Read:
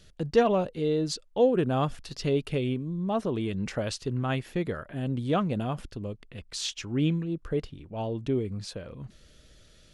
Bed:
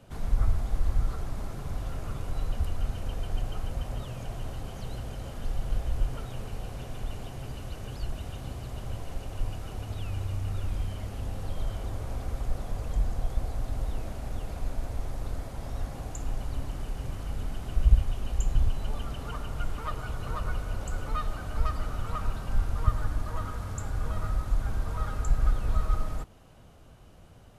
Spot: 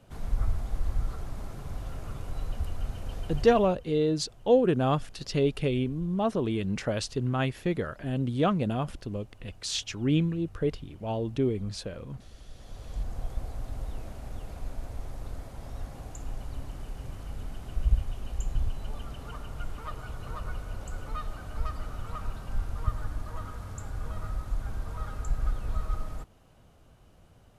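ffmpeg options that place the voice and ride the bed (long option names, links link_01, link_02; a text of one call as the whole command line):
ffmpeg -i stem1.wav -i stem2.wav -filter_complex "[0:a]adelay=3100,volume=1dB[link_01];[1:a]volume=10.5dB,afade=type=out:start_time=3.44:duration=0.3:silence=0.177828,afade=type=in:start_time=12.51:duration=0.67:silence=0.211349[link_02];[link_01][link_02]amix=inputs=2:normalize=0" out.wav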